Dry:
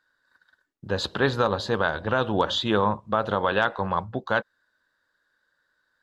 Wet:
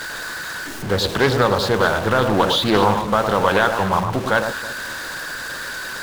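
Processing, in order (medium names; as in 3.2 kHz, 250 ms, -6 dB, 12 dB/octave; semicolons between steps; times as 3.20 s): jump at every zero crossing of -28 dBFS; echo whose repeats swap between lows and highs 108 ms, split 1.3 kHz, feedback 52%, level -6 dB; loudspeaker Doppler distortion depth 0.39 ms; trim +4.5 dB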